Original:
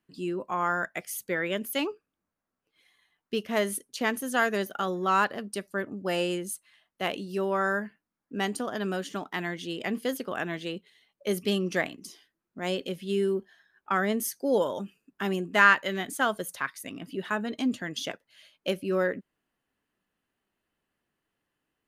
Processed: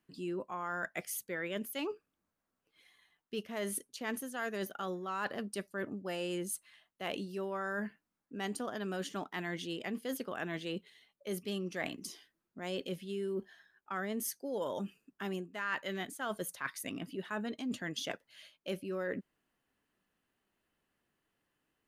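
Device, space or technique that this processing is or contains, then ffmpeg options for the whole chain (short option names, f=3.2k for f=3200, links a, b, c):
compression on the reversed sound: -af "areverse,acompressor=threshold=-35dB:ratio=6,areverse"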